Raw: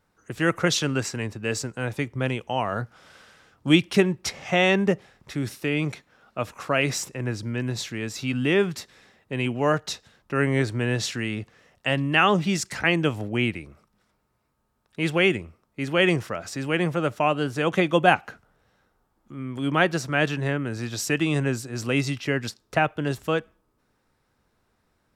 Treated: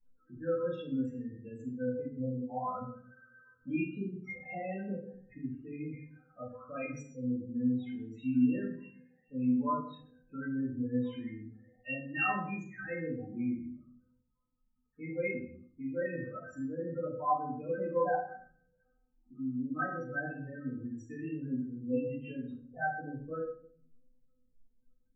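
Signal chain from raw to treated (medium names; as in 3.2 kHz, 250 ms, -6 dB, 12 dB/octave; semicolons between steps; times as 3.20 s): median filter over 9 samples; spectral selection erased 3.94–4.18 s, 550–3700 Hz; in parallel at -0.5 dB: compression, threshold -35 dBFS, peak gain reduction 21 dB; on the sum: loudest bins only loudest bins 8; inharmonic resonator 250 Hz, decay 0.35 s, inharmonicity 0.002; reverberation RT60 0.55 s, pre-delay 3 ms, DRR -10.5 dB; trim -4.5 dB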